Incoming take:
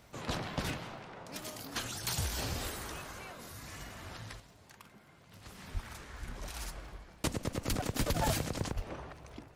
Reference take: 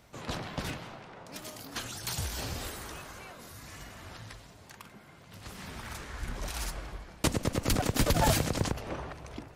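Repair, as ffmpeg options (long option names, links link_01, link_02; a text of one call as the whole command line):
ffmpeg -i in.wav -filter_complex "[0:a]adeclick=threshold=4,asplit=3[link_01][link_02][link_03];[link_01]afade=type=out:start_time=5.73:duration=0.02[link_04];[link_02]highpass=frequency=140:width=0.5412,highpass=frequency=140:width=1.3066,afade=type=in:start_time=5.73:duration=0.02,afade=type=out:start_time=5.85:duration=0.02[link_05];[link_03]afade=type=in:start_time=5.85:duration=0.02[link_06];[link_04][link_05][link_06]amix=inputs=3:normalize=0,asplit=3[link_07][link_08][link_09];[link_07]afade=type=out:start_time=8.75:duration=0.02[link_10];[link_08]highpass=frequency=140:width=0.5412,highpass=frequency=140:width=1.3066,afade=type=in:start_time=8.75:duration=0.02,afade=type=out:start_time=8.87:duration=0.02[link_11];[link_09]afade=type=in:start_time=8.87:duration=0.02[link_12];[link_10][link_11][link_12]amix=inputs=3:normalize=0,asetnsamples=nb_out_samples=441:pad=0,asendcmd='4.4 volume volume 6dB',volume=0dB" out.wav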